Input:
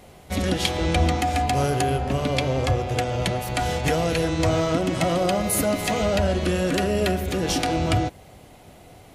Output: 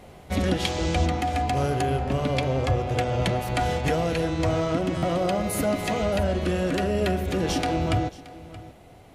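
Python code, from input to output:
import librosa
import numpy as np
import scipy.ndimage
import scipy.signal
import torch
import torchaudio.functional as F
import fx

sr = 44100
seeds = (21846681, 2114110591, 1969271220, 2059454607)

y = fx.dmg_noise_band(x, sr, seeds[0], low_hz=2500.0, high_hz=7300.0, level_db=-34.0, at=(0.63, 1.05), fade=0.02)
y = fx.high_shelf(y, sr, hz=3800.0, db=-7.0)
y = y + 10.0 ** (-18.0 / 20.0) * np.pad(y, (int(625 * sr / 1000.0), 0))[:len(y)]
y = fx.rider(y, sr, range_db=3, speed_s=0.5)
y = fx.buffer_glitch(y, sr, at_s=(4.97,), block=512, repeats=4)
y = y * librosa.db_to_amplitude(-1.5)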